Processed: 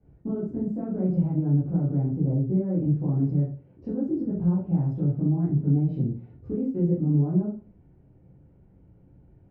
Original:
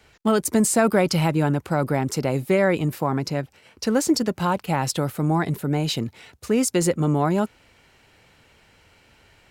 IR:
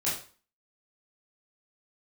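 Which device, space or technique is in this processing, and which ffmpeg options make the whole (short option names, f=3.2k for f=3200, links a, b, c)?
television next door: -filter_complex "[0:a]asettb=1/sr,asplit=3[a][b][c];[a]atrim=end=2.114[d];[b]atrim=start=2.11:end=2.78,asetpts=PTS-STARTPTS,afade=t=in:d=0.004:c=qsin,afade=t=out:st=0.666:d=0.004:c=qsin,lowpass=f=1.3k:p=1[e];[c]atrim=start=2.776[f];[d][e]acrossfade=d=0.004:c1=hsin:c2=qsin[g];[g][f]acrossfade=d=0.004:c1=qsin:c2=hsin,acompressor=threshold=-26dB:ratio=5,lowpass=260[h];[1:a]atrim=start_sample=2205[i];[h][i]afir=irnorm=-1:irlink=0"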